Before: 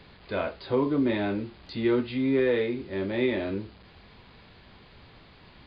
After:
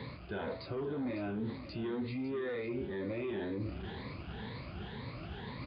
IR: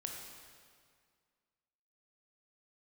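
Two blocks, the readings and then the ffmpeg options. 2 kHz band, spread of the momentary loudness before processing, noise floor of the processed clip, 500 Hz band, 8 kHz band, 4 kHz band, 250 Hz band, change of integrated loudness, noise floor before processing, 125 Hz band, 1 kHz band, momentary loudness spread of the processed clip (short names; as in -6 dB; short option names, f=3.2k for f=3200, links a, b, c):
-9.5 dB, 10 LU, -47 dBFS, -11.0 dB, n/a, -8.5 dB, -10.0 dB, -11.5 dB, -53 dBFS, -4.0 dB, -8.0 dB, 7 LU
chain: -filter_complex "[0:a]afftfilt=real='re*pow(10,13/40*sin(2*PI*(1*log(max(b,1)*sr/1024/100)/log(2)-(2)*(pts-256)/sr)))':imag='im*pow(10,13/40*sin(2*PI*(1*log(max(b,1)*sr/1024/100)/log(2)-(2)*(pts-256)/sr)))':win_size=1024:overlap=0.75,bandreject=f=93.65:t=h:w=4,bandreject=f=187.3:t=h:w=4,bandreject=f=280.95:t=h:w=4,bandreject=f=374.6:t=h:w=4,bandreject=f=468.25:t=h:w=4,bandreject=f=561.9:t=h:w=4,bandreject=f=655.55:t=h:w=4,bandreject=f=749.2:t=h:w=4,bandreject=f=842.85:t=h:w=4,bandreject=f=936.5:t=h:w=4,bandreject=f=1.03015k:t=h:w=4,bandreject=f=1.1238k:t=h:w=4,bandreject=f=1.21745k:t=h:w=4,bandreject=f=1.3111k:t=h:w=4,bandreject=f=1.40475k:t=h:w=4,bandreject=f=1.4984k:t=h:w=4,bandreject=f=1.59205k:t=h:w=4,bandreject=f=1.6857k:t=h:w=4,bandreject=f=1.77935k:t=h:w=4,bandreject=f=1.873k:t=h:w=4,bandreject=f=1.96665k:t=h:w=4,bandreject=f=2.0603k:t=h:w=4,bandreject=f=2.15395k:t=h:w=4,bandreject=f=2.2476k:t=h:w=4,bandreject=f=2.34125k:t=h:w=4,bandreject=f=2.4349k:t=h:w=4,bandreject=f=2.52855k:t=h:w=4,bandreject=f=2.6222k:t=h:w=4,bandreject=f=2.71585k:t=h:w=4,bandreject=f=2.8095k:t=h:w=4,bandreject=f=2.90315k:t=h:w=4,acrossover=split=1500[a][b];[a]asoftclip=type=tanh:threshold=-23.5dB[c];[c][b]amix=inputs=2:normalize=0,aemphasis=mode=reproduction:type=50fm,alimiter=level_in=3dB:limit=-24dB:level=0:latency=1,volume=-3dB,lowshelf=f=260:g=7.5,areverse,acompressor=threshold=-46dB:ratio=4,areverse,highpass=68,aecho=1:1:553:0.224,volume=7.5dB"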